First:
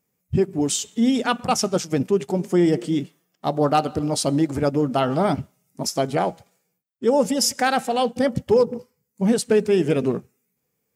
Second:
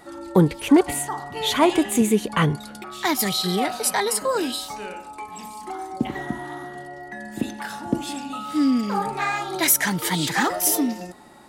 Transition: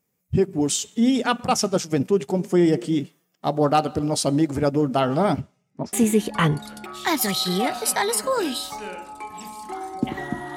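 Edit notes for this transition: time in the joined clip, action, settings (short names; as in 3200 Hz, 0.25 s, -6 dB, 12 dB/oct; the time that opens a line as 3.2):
first
5.4–5.93 LPF 8600 Hz -> 1500 Hz
5.93 switch to second from 1.91 s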